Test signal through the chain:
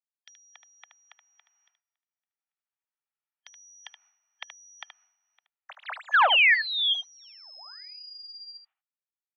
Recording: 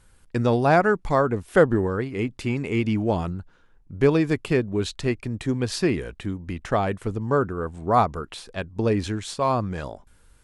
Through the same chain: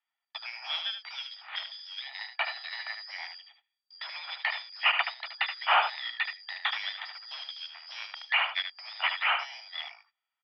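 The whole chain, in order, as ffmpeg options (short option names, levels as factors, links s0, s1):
-filter_complex "[0:a]afftfilt=real='real(if(lt(b,272),68*(eq(floor(b/68),0)*3+eq(floor(b/68),1)*2+eq(floor(b/68),2)*1+eq(floor(b/68),3)*0)+mod(b,68),b),0)':imag='imag(if(lt(b,272),68*(eq(floor(b/68),0)*3+eq(floor(b/68),1)*2+eq(floor(b/68),2)*1+eq(floor(b/68),3)*0)+mod(b,68),b),0)':win_size=2048:overlap=0.75,agate=range=0.0447:threshold=0.00708:ratio=16:detection=peak,highshelf=f=2300:g=-7,aecho=1:1:1.9:0.32,dynaudnorm=f=460:g=9:m=3.98,asplit=2[s0][s1];[s1]highpass=f=720:p=1,volume=11.2,asoftclip=type=tanh:threshold=0.841[s2];[s0][s2]amix=inputs=2:normalize=0,lowpass=f=2100:p=1,volume=0.501,asoftclip=type=tanh:threshold=0.299,acompressor=threshold=0.126:ratio=6,aecho=1:1:75:0.398,highpass=f=380:t=q:w=0.5412,highpass=f=380:t=q:w=1.307,lowpass=f=2900:t=q:w=0.5176,lowpass=f=2900:t=q:w=0.7071,lowpass=f=2900:t=q:w=1.932,afreqshift=270"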